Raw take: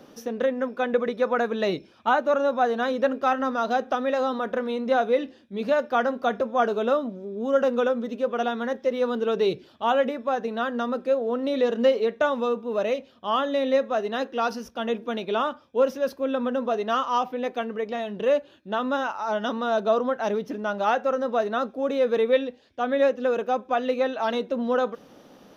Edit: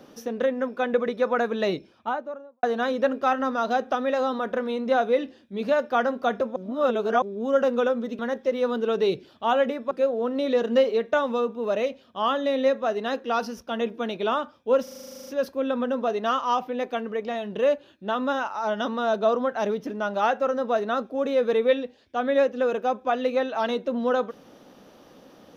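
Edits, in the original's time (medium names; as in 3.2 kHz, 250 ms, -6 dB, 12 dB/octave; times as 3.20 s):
1.65–2.63 s: studio fade out
6.56–7.22 s: reverse
8.19–8.58 s: delete
10.30–10.99 s: delete
15.91 s: stutter 0.04 s, 12 plays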